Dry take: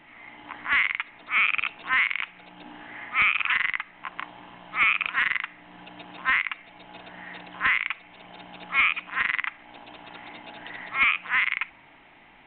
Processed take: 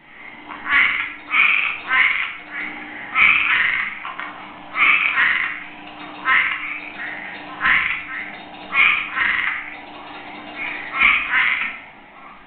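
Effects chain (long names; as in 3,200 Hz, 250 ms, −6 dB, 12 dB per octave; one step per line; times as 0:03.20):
spectral magnitudes quantised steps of 15 dB
echo through a band-pass that steps 606 ms, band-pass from 260 Hz, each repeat 1.4 octaves, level −6.5 dB
rectangular room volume 150 cubic metres, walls mixed, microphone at 1.1 metres
level +4.5 dB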